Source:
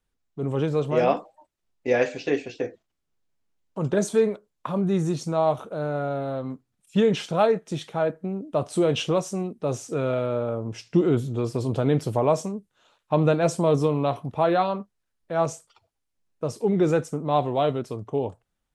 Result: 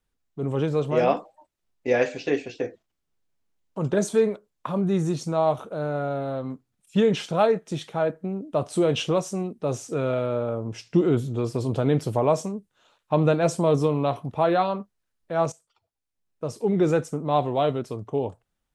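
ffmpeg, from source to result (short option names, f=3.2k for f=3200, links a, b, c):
-filter_complex "[0:a]asplit=2[a][b];[a]atrim=end=15.52,asetpts=PTS-STARTPTS,afade=t=out:st=15.516:d=0.004:c=hsin:silence=0.16788[c];[b]atrim=start=15.52,asetpts=PTS-STARTPTS,afade=t=in:d=1.27:silence=0.16788[d];[c][d]concat=n=2:v=0:a=1"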